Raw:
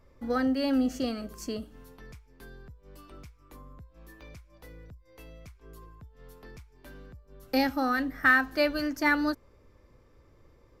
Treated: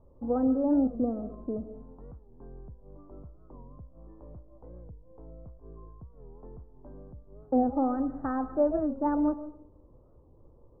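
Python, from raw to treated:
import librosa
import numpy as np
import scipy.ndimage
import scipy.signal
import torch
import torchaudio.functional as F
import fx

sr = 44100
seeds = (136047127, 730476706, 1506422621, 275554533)

y = scipy.signal.sosfilt(scipy.signal.butter(6, 980.0, 'lowpass', fs=sr, output='sos'), x)
y = fx.rev_freeverb(y, sr, rt60_s=0.63, hf_ratio=0.35, predelay_ms=90, drr_db=13.5)
y = fx.record_warp(y, sr, rpm=45.0, depth_cents=160.0)
y = y * librosa.db_to_amplitude(1.5)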